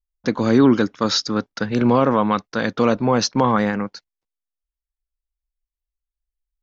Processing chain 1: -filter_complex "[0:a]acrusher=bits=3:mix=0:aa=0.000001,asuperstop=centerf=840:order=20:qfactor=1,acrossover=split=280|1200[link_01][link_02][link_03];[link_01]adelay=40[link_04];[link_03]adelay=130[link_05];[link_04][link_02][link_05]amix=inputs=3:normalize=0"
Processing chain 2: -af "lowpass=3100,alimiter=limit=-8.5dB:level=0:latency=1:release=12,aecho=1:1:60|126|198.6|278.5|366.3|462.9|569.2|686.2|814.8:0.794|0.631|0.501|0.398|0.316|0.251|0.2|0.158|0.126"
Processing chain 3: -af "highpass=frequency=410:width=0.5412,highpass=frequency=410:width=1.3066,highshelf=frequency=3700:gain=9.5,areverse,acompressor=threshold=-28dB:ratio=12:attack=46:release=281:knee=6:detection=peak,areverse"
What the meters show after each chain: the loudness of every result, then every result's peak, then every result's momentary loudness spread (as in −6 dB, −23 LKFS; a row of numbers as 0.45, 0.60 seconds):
−21.0, −17.0, −29.5 LKFS; −4.5, −2.5, −11.0 dBFS; 9, 11, 5 LU